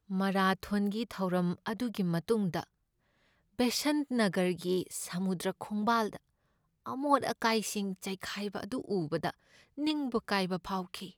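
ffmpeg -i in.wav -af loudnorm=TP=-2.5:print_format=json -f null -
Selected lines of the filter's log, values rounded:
"input_i" : "-33.0",
"input_tp" : "-12.4",
"input_lra" : "2.5",
"input_thresh" : "-43.3",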